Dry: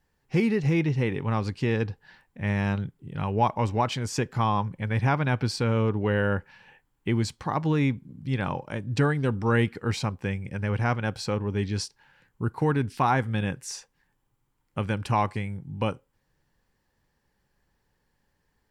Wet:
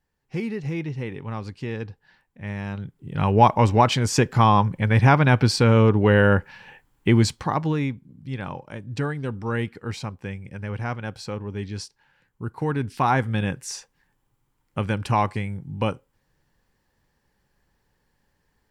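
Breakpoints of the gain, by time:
2.71 s -5 dB
3.26 s +8 dB
7.28 s +8 dB
7.95 s -3.5 dB
12.43 s -3.5 dB
13.15 s +3 dB

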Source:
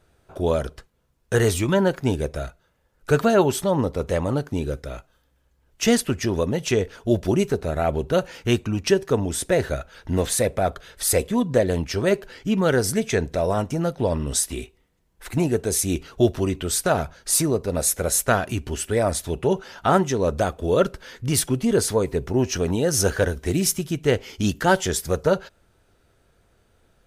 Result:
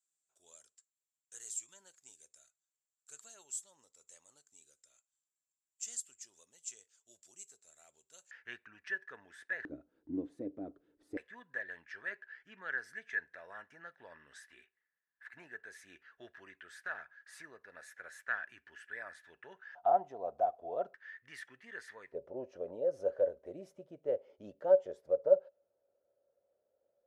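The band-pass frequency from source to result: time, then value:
band-pass, Q 15
7400 Hz
from 8.31 s 1700 Hz
from 9.65 s 300 Hz
from 11.17 s 1700 Hz
from 19.75 s 710 Hz
from 20.94 s 1800 Hz
from 22.12 s 560 Hz

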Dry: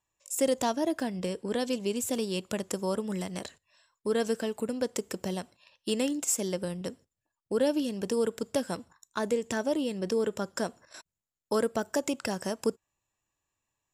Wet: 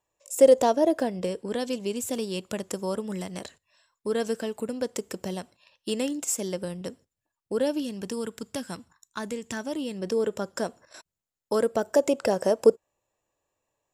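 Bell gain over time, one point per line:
bell 530 Hz 1.2 oct
0.99 s +11.5 dB
1.47 s +1 dB
7.61 s +1 dB
8.25 s -7.5 dB
9.61 s -7.5 dB
10.2 s +3.5 dB
11.55 s +3.5 dB
12.24 s +14.5 dB

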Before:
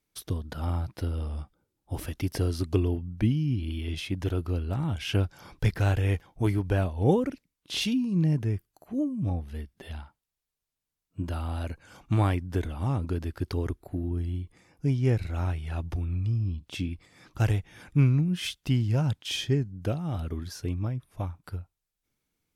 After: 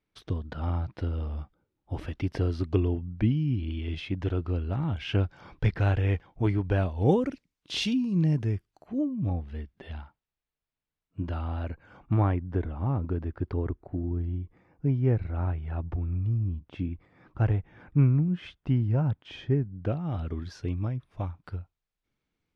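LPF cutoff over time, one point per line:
6.61 s 3100 Hz
7.1 s 6400 Hz
8.4 s 6400 Hz
9.19 s 3100 Hz
11.22 s 3100 Hz
12.21 s 1500 Hz
19.53 s 1500 Hz
20.36 s 3800 Hz

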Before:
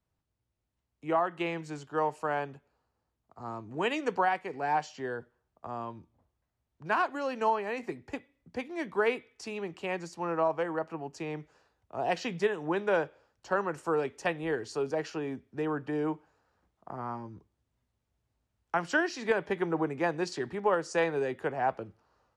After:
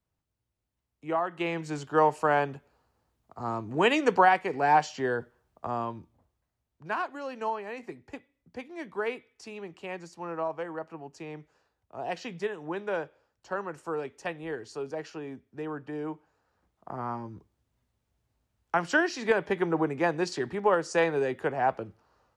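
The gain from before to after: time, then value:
1.22 s -1 dB
1.84 s +7 dB
5.67 s +7 dB
7.06 s -4 dB
16.08 s -4 dB
16.97 s +3 dB

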